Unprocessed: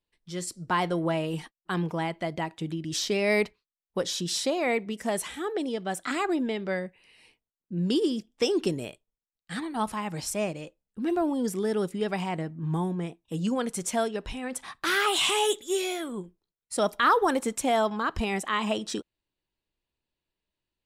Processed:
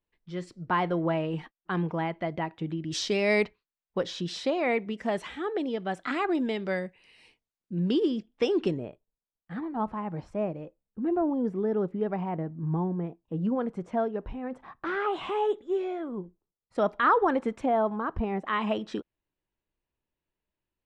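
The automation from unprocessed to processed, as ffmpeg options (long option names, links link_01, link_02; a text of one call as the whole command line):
ffmpeg -i in.wav -af "asetnsamples=nb_out_samples=441:pad=0,asendcmd='2.91 lowpass f 5700;3.44 lowpass f 3100;6.35 lowpass f 7500;7.79 lowpass f 2900;8.78 lowpass f 1100;16.75 lowpass f 1900;17.66 lowpass f 1100;18.47 lowpass f 2300',lowpass=2400" out.wav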